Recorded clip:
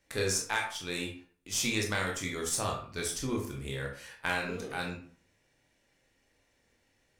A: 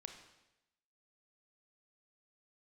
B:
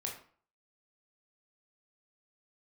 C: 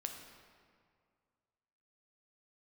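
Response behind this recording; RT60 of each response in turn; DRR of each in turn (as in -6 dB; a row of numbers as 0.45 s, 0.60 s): B; 0.90 s, 0.45 s, 2.1 s; 5.0 dB, -1.0 dB, 3.5 dB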